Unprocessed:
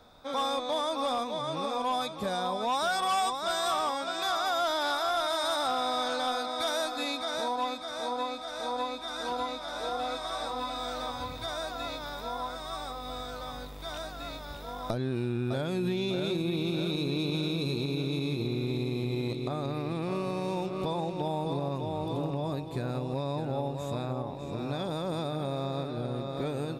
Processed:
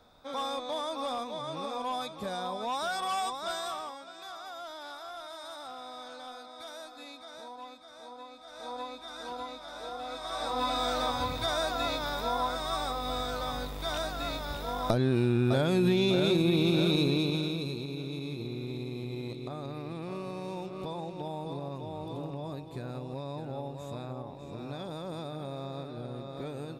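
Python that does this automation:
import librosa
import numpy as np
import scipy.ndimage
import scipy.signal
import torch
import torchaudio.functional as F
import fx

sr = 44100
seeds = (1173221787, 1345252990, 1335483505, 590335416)

y = fx.gain(x, sr, db=fx.line((3.5, -4.0), (4.08, -14.0), (8.3, -14.0), (8.7, -6.5), (10.04, -6.5), (10.68, 5.0), (17.0, 5.0), (17.83, -6.0)))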